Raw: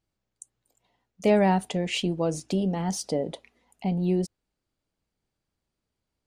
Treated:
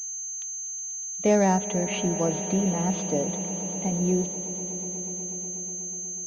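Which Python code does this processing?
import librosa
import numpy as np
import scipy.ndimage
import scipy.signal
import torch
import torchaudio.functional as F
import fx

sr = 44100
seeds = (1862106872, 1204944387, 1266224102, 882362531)

y = fx.echo_swell(x, sr, ms=122, loudest=5, wet_db=-17.5)
y = fx.pwm(y, sr, carrier_hz=6300.0)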